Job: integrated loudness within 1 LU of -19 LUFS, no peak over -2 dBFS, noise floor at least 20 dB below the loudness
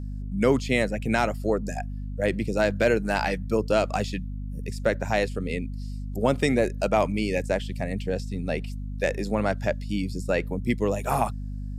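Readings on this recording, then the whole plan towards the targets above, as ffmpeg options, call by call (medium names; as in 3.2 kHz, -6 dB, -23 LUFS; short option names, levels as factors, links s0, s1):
hum 50 Hz; highest harmonic 250 Hz; hum level -30 dBFS; loudness -26.5 LUFS; peak level -8.5 dBFS; loudness target -19.0 LUFS
-> -af "bandreject=f=50:t=h:w=6,bandreject=f=100:t=h:w=6,bandreject=f=150:t=h:w=6,bandreject=f=200:t=h:w=6,bandreject=f=250:t=h:w=6"
-af "volume=2.37,alimiter=limit=0.794:level=0:latency=1"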